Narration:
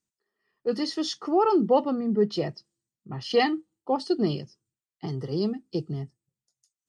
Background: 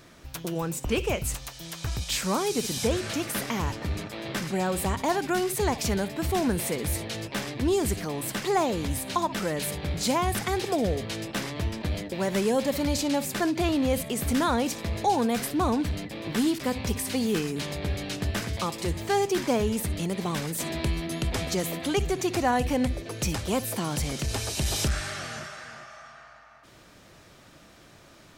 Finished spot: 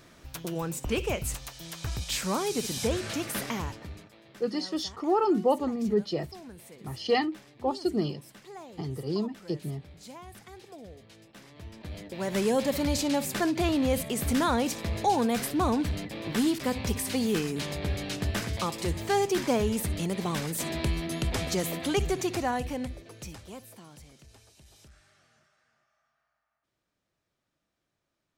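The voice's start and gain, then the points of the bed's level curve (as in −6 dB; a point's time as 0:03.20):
3.75 s, −3.0 dB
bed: 0:03.52 −2.5 dB
0:04.25 −20.5 dB
0:11.36 −20.5 dB
0:12.43 −1 dB
0:22.13 −1 dB
0:24.65 −29.5 dB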